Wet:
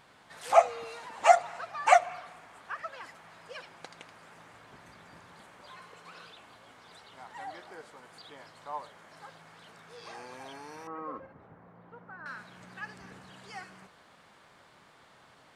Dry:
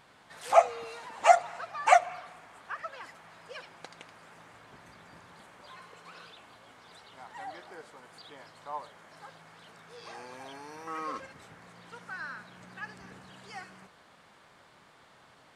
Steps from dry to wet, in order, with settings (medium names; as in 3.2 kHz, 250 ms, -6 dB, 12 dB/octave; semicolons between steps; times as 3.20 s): 10.87–12.26 s: low-pass 1 kHz 12 dB/octave